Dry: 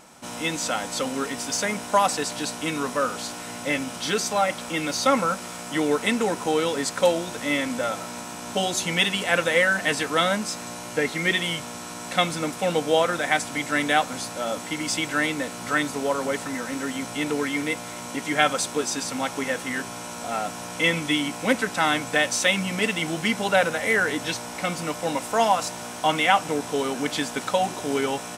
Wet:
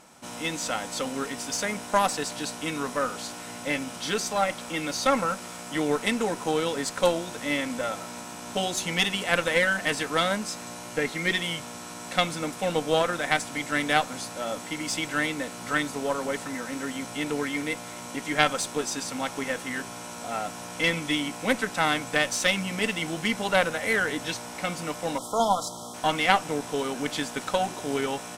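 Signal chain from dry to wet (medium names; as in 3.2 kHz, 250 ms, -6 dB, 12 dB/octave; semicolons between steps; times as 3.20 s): Chebyshev shaper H 2 -7 dB, 6 -44 dB, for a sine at -3 dBFS; spectral selection erased 25.18–25.94 s, 1.4–3 kHz; trim -3.5 dB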